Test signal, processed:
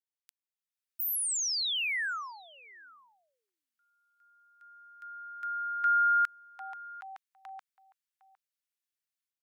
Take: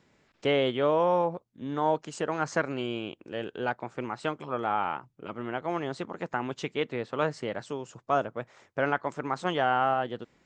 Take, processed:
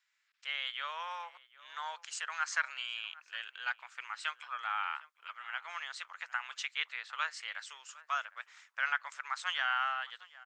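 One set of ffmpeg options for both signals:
-filter_complex "[0:a]highpass=f=1400:w=0.5412,highpass=f=1400:w=1.3066,dynaudnorm=f=440:g=3:m=3.35,asplit=2[s0][s1];[s1]adelay=758,volume=0.126,highshelf=f=4000:g=-17.1[s2];[s0][s2]amix=inputs=2:normalize=0,volume=0.376"

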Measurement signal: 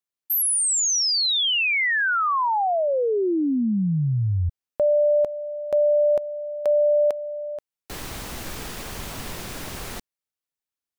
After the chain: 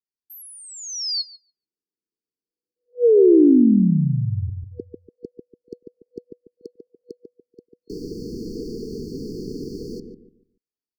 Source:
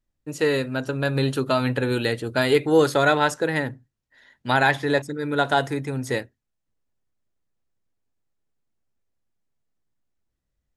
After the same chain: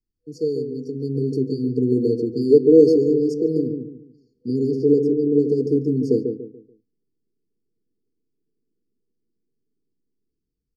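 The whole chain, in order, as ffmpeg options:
-filter_complex "[0:a]highshelf=f=6300:t=q:w=1.5:g=-11.5,asplit=2[s0][s1];[s1]adelay=144,lowpass=f=820:p=1,volume=0.562,asplit=2[s2][s3];[s3]adelay=144,lowpass=f=820:p=1,volume=0.35,asplit=2[s4][s5];[s5]adelay=144,lowpass=f=820:p=1,volume=0.35,asplit=2[s6][s7];[s7]adelay=144,lowpass=f=820:p=1,volume=0.35[s8];[s0][s2][s4][s6][s8]amix=inputs=5:normalize=0,acrossover=split=190|470|2200[s9][s10][s11][s12];[s10]dynaudnorm=f=170:g=17:m=5.96[s13];[s9][s13][s11][s12]amix=inputs=4:normalize=0,afftfilt=real='re*(1-between(b*sr/4096,490,4300))':imag='im*(1-between(b*sr/4096,490,4300))':win_size=4096:overlap=0.75,equalizer=f=1100:t=o:w=2.6:g=9.5,volume=0.501"

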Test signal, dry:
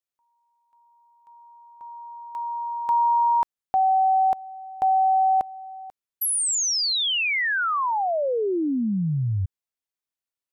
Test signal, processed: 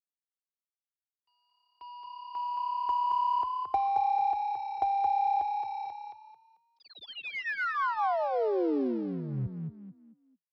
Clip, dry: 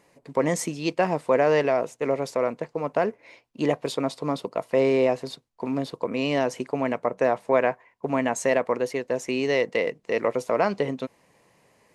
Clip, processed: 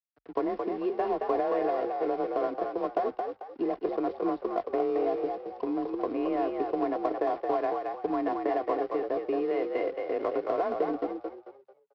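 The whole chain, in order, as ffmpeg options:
-filter_complex "[0:a]lowpass=1000,equalizer=f=120:t=o:w=0.55:g=-11,aecho=1:1:2.9:0.74,acompressor=threshold=0.0355:ratio=8:attack=63:release=54:knee=6:detection=peak,aresample=11025,aeval=exprs='sgn(val(0))*max(abs(val(0))-0.00335,0)':c=same,aresample=44100,afreqshift=32,asplit=2[s0][s1];[s1]asoftclip=type=tanh:threshold=0.0335,volume=0.473[s2];[s0][s2]amix=inputs=2:normalize=0,asplit=5[s3][s4][s5][s6][s7];[s4]adelay=221,afreqshift=34,volume=0.596[s8];[s5]adelay=442,afreqshift=68,volume=0.191[s9];[s6]adelay=663,afreqshift=102,volume=0.061[s10];[s7]adelay=884,afreqshift=136,volume=0.0195[s11];[s3][s8][s9][s10][s11]amix=inputs=5:normalize=0,volume=0.668"

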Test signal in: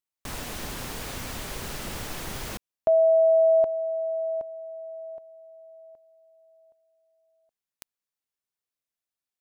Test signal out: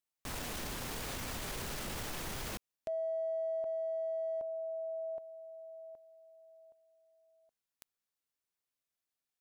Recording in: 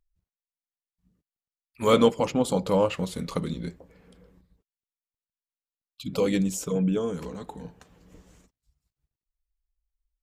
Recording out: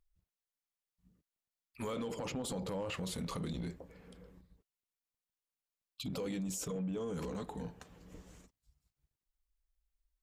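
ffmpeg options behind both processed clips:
-af "acompressor=threshold=0.0224:ratio=12:attack=0.22:release=35:knee=1:detection=peak,volume=0.891"

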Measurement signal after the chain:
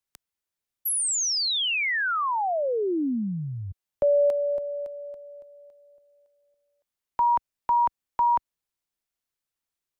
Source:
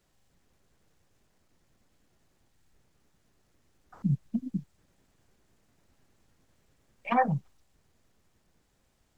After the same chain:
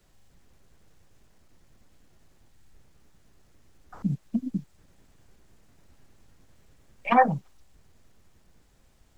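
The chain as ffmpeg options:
-filter_complex "[0:a]lowshelf=f=78:g=7.5,acrossover=split=220|1400[s0][s1][s2];[s0]acompressor=threshold=0.00891:ratio=6[s3];[s3][s1][s2]amix=inputs=3:normalize=0,volume=2"

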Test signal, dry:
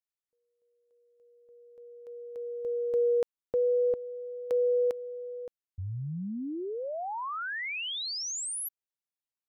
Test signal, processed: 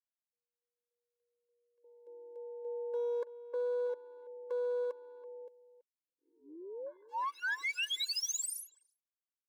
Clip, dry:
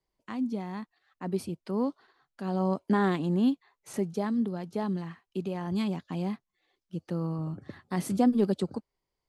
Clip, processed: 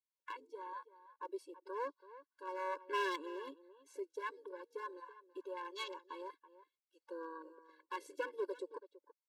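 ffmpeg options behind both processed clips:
-filter_complex "[0:a]acrossover=split=9000[s0][s1];[s1]acompressor=threshold=0.00224:ratio=4:attack=1:release=60[s2];[s0][s2]amix=inputs=2:normalize=0,highpass=860,afwtdn=0.00501,aeval=exprs='clip(val(0),-1,0.0168)':c=same,asplit=2[s3][s4];[s4]adelay=330,highpass=300,lowpass=3400,asoftclip=type=hard:threshold=0.0282,volume=0.178[s5];[s3][s5]amix=inputs=2:normalize=0,afftfilt=real='re*eq(mod(floor(b*sr/1024/290),2),1)':imag='im*eq(mod(floor(b*sr/1024/290),2),1)':win_size=1024:overlap=0.75,volume=1.41"

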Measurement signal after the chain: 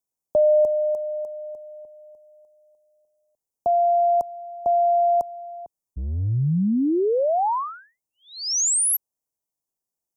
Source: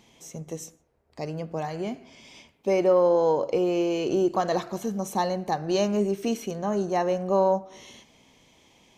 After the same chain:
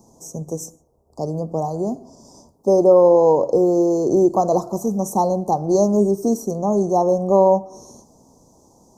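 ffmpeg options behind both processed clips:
-filter_complex "[0:a]acrossover=split=100|2200[s0][s1][s2];[s0]asoftclip=type=tanh:threshold=0.0119[s3];[s3][s1][s2]amix=inputs=3:normalize=0,asuperstop=centerf=2400:order=8:qfactor=0.53,volume=2.51"

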